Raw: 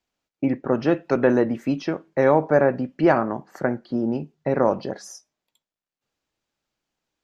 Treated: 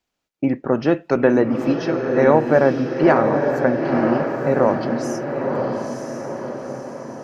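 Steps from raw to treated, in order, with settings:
feedback delay with all-pass diffusion 949 ms, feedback 52%, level −4 dB
level +2.5 dB

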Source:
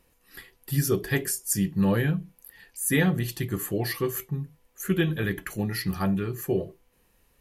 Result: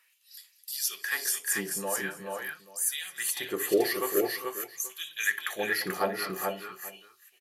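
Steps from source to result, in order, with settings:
0:01.12–0:03.18: downward compressor, threshold −25 dBFS, peak gain reduction 7.5 dB
auto-filter high-pass sine 0.47 Hz 400–6,000 Hz
multi-tap delay 60/214/403/435/833 ms −18.5/−17.5/−12.5/−3.5/−19.5 dB

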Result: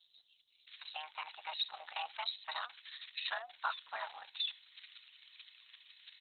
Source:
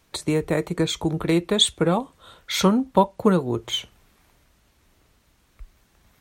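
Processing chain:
spike at every zero crossing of −21 dBFS
resonant band-pass 6,500 Hz, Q 0.54
multiband delay without the direct sound highs, lows 670 ms, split 4,400 Hz
frequency shifter +460 Hz
level −3.5 dB
Opus 6 kbit/s 48,000 Hz

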